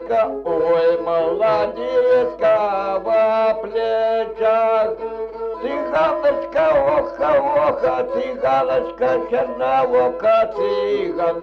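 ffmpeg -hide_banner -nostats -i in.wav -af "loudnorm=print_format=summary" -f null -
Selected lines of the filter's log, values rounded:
Input Integrated:    -18.4 LUFS
Input True Peak:      -7.6 dBTP
Input LRA:             0.8 LU
Input Threshold:     -28.4 LUFS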